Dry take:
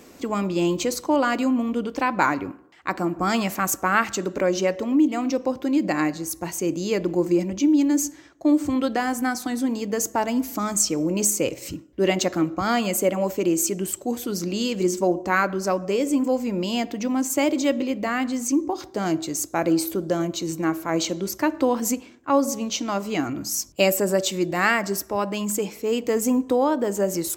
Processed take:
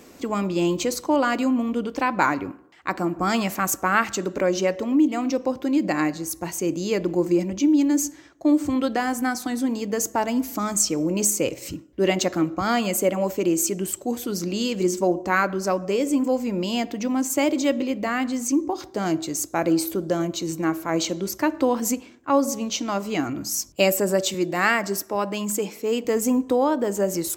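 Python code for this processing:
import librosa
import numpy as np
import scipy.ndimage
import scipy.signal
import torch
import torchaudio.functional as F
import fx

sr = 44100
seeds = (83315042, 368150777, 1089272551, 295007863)

y = fx.highpass(x, sr, hz=150.0, slope=12, at=(24.34, 26.05))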